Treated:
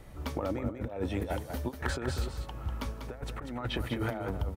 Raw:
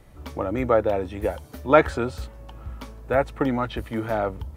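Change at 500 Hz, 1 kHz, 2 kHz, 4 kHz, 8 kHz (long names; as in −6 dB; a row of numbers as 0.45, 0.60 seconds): −15.0 dB, −14.0 dB, −9.5 dB, −0.5 dB, can't be measured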